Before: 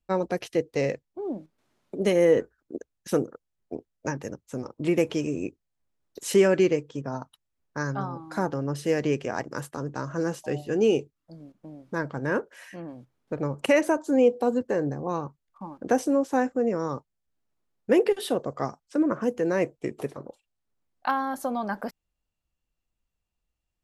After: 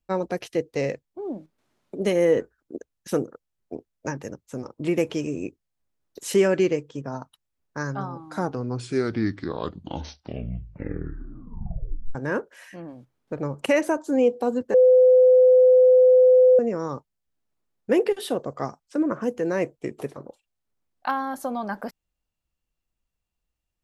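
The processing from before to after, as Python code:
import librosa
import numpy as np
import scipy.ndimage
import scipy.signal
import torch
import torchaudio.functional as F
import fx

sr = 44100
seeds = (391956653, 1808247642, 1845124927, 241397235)

y = fx.edit(x, sr, fx.tape_stop(start_s=8.23, length_s=3.92),
    fx.bleep(start_s=14.74, length_s=1.85, hz=508.0, db=-11.0), tone=tone)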